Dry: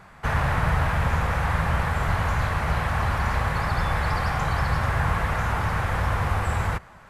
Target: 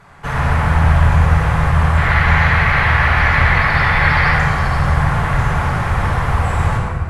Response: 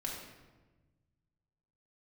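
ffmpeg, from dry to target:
-filter_complex "[0:a]asettb=1/sr,asplit=3[link_01][link_02][link_03];[link_01]atrim=end=1.974[link_04];[link_02]atrim=start=1.97:end=4.33,asetpts=PTS-STARTPTS,afade=type=in:duration=0.004:curve=qsin,afade=type=out:start_time=2.356:duration=0.004:curve=qsin,equalizer=frequency=2000:width_type=o:width=1:gain=12,equalizer=frequency=4000:width_type=o:width=1:gain=5,equalizer=frequency=8000:width_type=o:width=1:gain=-7[link_05];[link_03]atrim=start=4.326[link_06];[link_04][link_05]acrossfade=duration=0.004:curve1=hsin:curve2=qsin[link_07];[link_07][link_06]acrossfade=duration=0.004:curve1=qsin:curve2=hsin[link_08];[1:a]atrim=start_sample=2205,asetrate=23373,aresample=44100[link_09];[link_08][link_09]afir=irnorm=-1:irlink=0,volume=1dB"

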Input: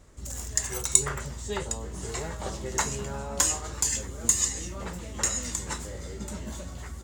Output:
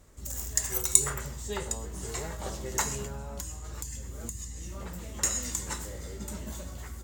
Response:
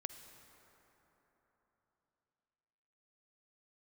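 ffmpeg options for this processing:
-filter_complex "[1:a]atrim=start_sample=2205,atrim=end_sample=6174[link_01];[0:a][link_01]afir=irnorm=-1:irlink=0,asettb=1/sr,asplit=3[link_02][link_03][link_04];[link_02]atrim=end=3.064[link_05];[link_03]atrim=start=3.06:end=5.23,asetpts=PTS-STARTPTS,afade=type=in:duration=0.004:curve=qsin,afade=type=out:start_time=2.166:duration=0.004:curve=qsin,acrossover=split=200[link_06][link_07];[link_07]acompressor=threshold=-41dB:ratio=10[link_08];[link_06][link_08]amix=inputs=2:normalize=0[link_09];[link_04]atrim=start=5.226[link_10];[link_05][link_09]acrossfade=duration=0.004:curve1=hsin:curve2=qsin[link_11];[link_11][link_10]acrossfade=duration=0.004:curve1=qsin:curve2=hsin,equalizer=frequency=15000:width_type=o:width=0.57:gain=14"

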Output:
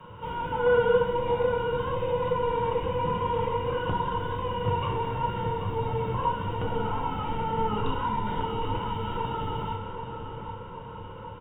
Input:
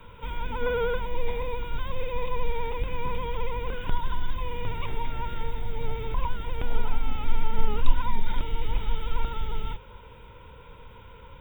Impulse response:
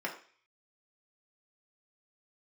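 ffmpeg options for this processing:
-filter_complex "[0:a]asplit=2[link_01][link_02];[link_02]adelay=784,lowpass=frequency=2700:poles=1,volume=-7dB,asplit=2[link_03][link_04];[link_04]adelay=784,lowpass=frequency=2700:poles=1,volume=0.52,asplit=2[link_05][link_06];[link_06]adelay=784,lowpass=frequency=2700:poles=1,volume=0.52,asplit=2[link_07][link_08];[link_08]adelay=784,lowpass=frequency=2700:poles=1,volume=0.52,asplit=2[link_09][link_10];[link_10]adelay=784,lowpass=frequency=2700:poles=1,volume=0.52,asplit=2[link_11][link_12];[link_12]adelay=784,lowpass=frequency=2700:poles=1,volume=0.52[link_13];[link_01][link_03][link_05][link_07][link_09][link_11][link_13]amix=inputs=7:normalize=0[link_14];[1:a]atrim=start_sample=2205,asetrate=24255,aresample=44100[link_15];[link_14][link_15]afir=irnorm=-1:irlink=0,volume=-3.5dB"

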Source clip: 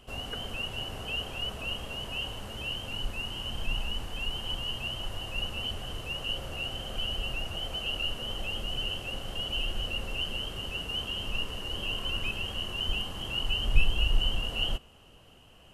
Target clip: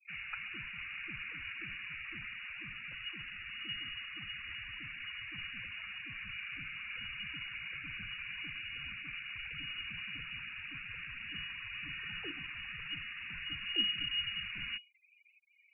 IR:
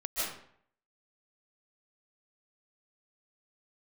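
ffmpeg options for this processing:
-filter_complex "[0:a]acrossover=split=240 2100:gain=0.178 1 0.0794[link_01][link_02][link_03];[link_01][link_02][link_03]amix=inputs=3:normalize=0,afftfilt=real='re*gte(hypot(re,im),0.00398)':imag='im*gte(hypot(re,im),0.00398)':win_size=1024:overlap=0.75,lowpass=frequency=2500:width_type=q:width=0.5098,lowpass=frequency=2500:width_type=q:width=0.6013,lowpass=frequency=2500:width_type=q:width=0.9,lowpass=frequency=2500:width_type=q:width=2.563,afreqshift=-2900,volume=1dB"

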